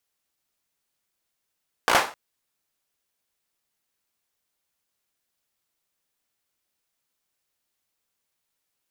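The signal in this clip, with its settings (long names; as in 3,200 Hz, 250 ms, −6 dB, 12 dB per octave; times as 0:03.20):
synth clap length 0.26 s, bursts 5, apart 17 ms, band 910 Hz, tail 0.34 s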